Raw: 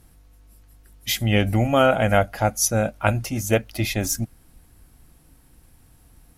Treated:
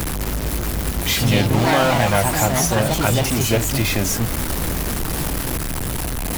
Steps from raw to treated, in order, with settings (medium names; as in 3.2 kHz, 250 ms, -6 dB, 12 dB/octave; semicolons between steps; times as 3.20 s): jump at every zero crossing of -17 dBFS; ever faster or slower copies 207 ms, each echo +3 st, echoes 3; three bands compressed up and down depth 40%; trim -3 dB